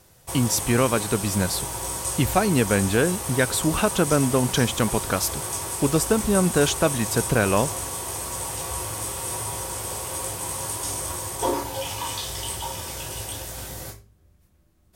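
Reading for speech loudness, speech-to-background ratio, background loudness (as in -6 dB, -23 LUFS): -23.0 LUFS, 5.5 dB, -28.5 LUFS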